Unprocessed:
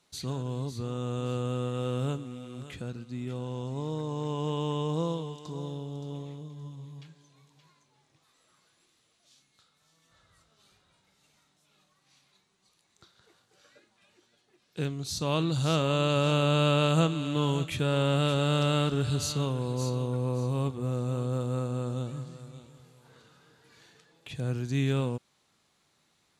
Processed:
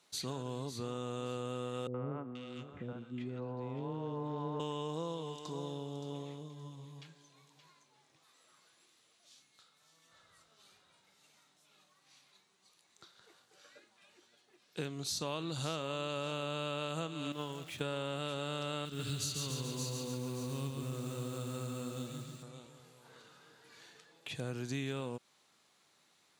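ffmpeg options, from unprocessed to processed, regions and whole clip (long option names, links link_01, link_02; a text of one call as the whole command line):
ffmpeg -i in.wav -filter_complex "[0:a]asettb=1/sr,asplit=3[link_01][link_02][link_03];[link_01]atrim=end=1.874[link_04];[link_02]atrim=start=1.87:end=4.6,asetpts=PTS-STARTPTS,afade=type=in:duration=0.004:curve=qsin,afade=type=out:start_time=2.726:duration=0.004:curve=qsin,adynamicsmooth=sensitivity=2:basefreq=2000,acrossover=split=510|1900[link_05][link_06][link_07];[link_06]adelay=70[link_08];[link_07]adelay=480[link_09];[link_05][link_08][link_09]amix=inputs=3:normalize=0,atrim=end_sample=120393[link_10];[link_03]atrim=start=4.596[link_11];[link_04][link_10]acrossfade=duration=0.004:curve1=hsin:curve2=qsin[link_12];[link_12][link_11]acrossfade=duration=0.004:curve1=qsin:curve2=hsin,asettb=1/sr,asplit=3[link_13][link_14][link_15];[link_13]atrim=end=17.324[link_16];[link_14]atrim=start=17.32:end=17.81,asetpts=PTS-STARTPTS,afade=type=in:duration=0.004:curve=qsin,afade=type=out:start_time=0.486:duration=0.004:curve=qsin,aeval=exprs='val(0)+0.5*0.0178*sgn(val(0))':channel_layout=same,agate=range=-13dB:threshold=-24dB:ratio=16:release=100:detection=peak[link_17];[link_15]atrim=start=17.806[link_18];[link_16][link_17]acrossfade=duration=0.004:curve1=hsin:curve2=qsin[link_19];[link_19][link_18]acrossfade=duration=0.004:curve1=qsin:curve2=hsin,asettb=1/sr,asplit=3[link_20][link_21][link_22];[link_20]atrim=end=18.854[link_23];[link_21]atrim=start=18.85:end=22.43,asetpts=PTS-STARTPTS,afade=type=in:duration=0.004:curve=qsin,afade=type=out:start_time=3.576:duration=0.004:curve=qsin,equalizer=frequency=720:width=0.59:gain=-13,acrusher=bits=7:mode=log:mix=0:aa=0.000001,aecho=1:1:140|280|420|560|700|840|980:0.596|0.328|0.18|0.0991|0.0545|0.03|0.0165,atrim=end_sample=157878[link_24];[link_22]atrim=start=22.426[link_25];[link_23][link_24]acrossfade=duration=0.004:curve1=hsin:curve2=qsin[link_26];[link_26][link_25]acrossfade=duration=0.004:curve1=qsin:curve2=hsin,highpass=frequency=330:poles=1,acompressor=threshold=-35dB:ratio=6,volume=1dB" out.wav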